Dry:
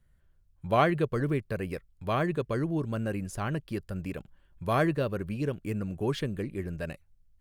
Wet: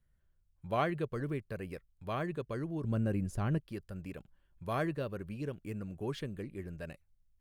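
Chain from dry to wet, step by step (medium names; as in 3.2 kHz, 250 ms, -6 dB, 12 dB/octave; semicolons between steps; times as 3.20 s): 2.84–3.58 s: bass shelf 460 Hz +10 dB; trim -8 dB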